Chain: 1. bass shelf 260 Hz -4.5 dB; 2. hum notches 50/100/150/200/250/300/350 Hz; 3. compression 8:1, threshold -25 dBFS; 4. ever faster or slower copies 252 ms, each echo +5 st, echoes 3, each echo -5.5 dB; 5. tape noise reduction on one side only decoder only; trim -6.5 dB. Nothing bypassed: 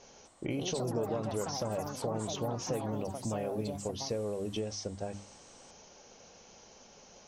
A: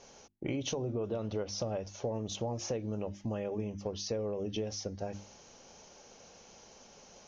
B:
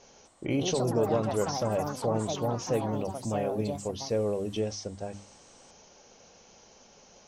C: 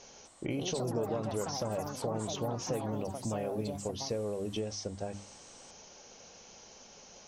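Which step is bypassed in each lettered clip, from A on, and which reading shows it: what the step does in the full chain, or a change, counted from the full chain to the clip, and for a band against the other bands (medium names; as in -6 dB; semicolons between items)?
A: 4, momentary loudness spread change -1 LU; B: 3, mean gain reduction 2.5 dB; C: 5, momentary loudness spread change -3 LU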